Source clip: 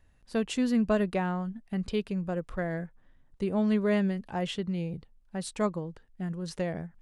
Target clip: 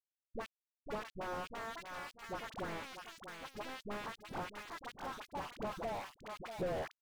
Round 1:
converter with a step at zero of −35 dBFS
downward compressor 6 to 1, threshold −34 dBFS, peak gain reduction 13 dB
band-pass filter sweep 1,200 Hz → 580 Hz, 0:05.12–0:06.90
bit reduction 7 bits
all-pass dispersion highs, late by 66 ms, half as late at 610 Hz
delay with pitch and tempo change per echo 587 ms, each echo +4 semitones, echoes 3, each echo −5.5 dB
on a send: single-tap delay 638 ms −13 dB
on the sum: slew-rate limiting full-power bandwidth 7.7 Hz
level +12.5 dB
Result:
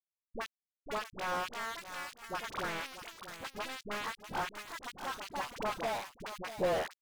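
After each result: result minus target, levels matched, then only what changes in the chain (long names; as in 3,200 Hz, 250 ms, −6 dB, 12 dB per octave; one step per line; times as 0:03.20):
slew-rate limiting: distortion −9 dB; converter with a step at zero: distortion +8 dB
change: slew-rate limiting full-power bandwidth 2.5 Hz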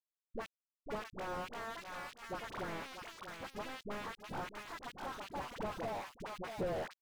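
converter with a step at zero: distortion +8 dB
change: converter with a step at zero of −43.5 dBFS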